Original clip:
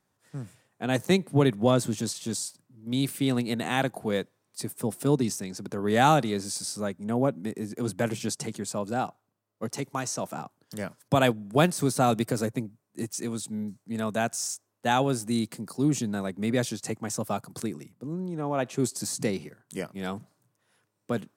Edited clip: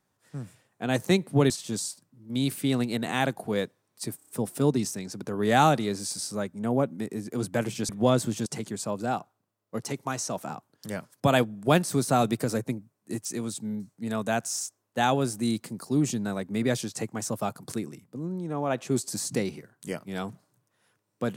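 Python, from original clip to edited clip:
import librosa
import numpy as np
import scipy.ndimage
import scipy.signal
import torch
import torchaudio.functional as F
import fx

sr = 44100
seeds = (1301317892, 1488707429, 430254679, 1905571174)

y = fx.edit(x, sr, fx.move(start_s=1.5, length_s=0.57, to_s=8.34),
    fx.stutter(start_s=4.74, slice_s=0.03, count=5), tone=tone)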